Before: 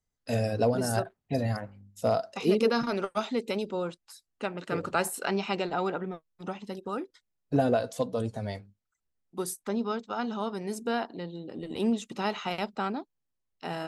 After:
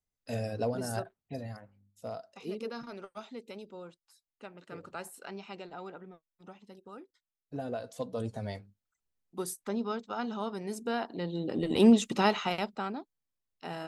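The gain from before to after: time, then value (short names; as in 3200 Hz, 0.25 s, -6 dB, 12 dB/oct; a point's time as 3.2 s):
1.03 s -6.5 dB
1.62 s -14 dB
7.55 s -14 dB
8.3 s -3 dB
10.98 s -3 dB
11.44 s +7 dB
12.11 s +7 dB
12.84 s -4.5 dB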